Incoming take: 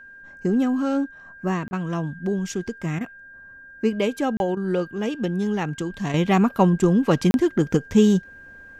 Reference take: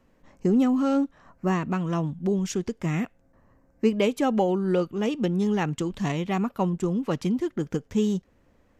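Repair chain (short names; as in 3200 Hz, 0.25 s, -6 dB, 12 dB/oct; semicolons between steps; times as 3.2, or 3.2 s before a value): notch 1600 Hz, Q 30; interpolate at 1.68/4.37/7.31, 31 ms; interpolate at 1.71/2.99/4.55, 17 ms; gain 0 dB, from 6.14 s -8 dB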